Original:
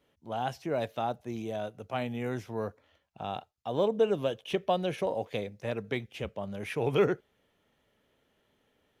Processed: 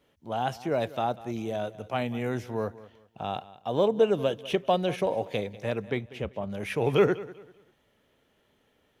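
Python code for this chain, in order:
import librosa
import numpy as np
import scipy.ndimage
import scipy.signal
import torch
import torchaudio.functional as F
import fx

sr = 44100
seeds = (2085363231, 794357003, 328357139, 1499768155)

p1 = fx.high_shelf(x, sr, hz=2800.0, db=-8.5, at=(5.85, 6.5))
p2 = p1 + fx.echo_feedback(p1, sr, ms=194, feedback_pct=29, wet_db=-18, dry=0)
y = p2 * 10.0 ** (3.5 / 20.0)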